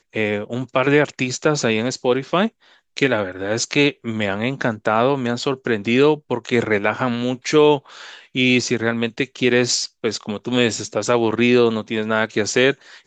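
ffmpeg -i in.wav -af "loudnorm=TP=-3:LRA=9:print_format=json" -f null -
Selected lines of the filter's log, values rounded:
"input_i" : "-19.3",
"input_tp" : "-2.4",
"input_lra" : "1.7",
"input_thresh" : "-29.5",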